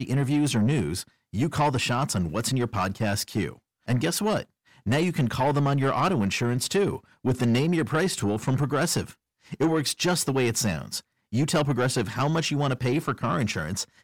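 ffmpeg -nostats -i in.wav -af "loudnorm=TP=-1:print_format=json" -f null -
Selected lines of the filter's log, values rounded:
"input_i" : "-25.8",
"input_tp" : "-15.6",
"input_lra" : "2.1",
"input_thresh" : "-35.9",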